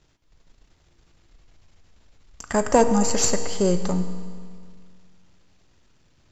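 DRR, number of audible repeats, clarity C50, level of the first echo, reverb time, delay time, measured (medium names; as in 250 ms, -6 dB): 8.0 dB, no echo, 9.5 dB, no echo, 2.1 s, no echo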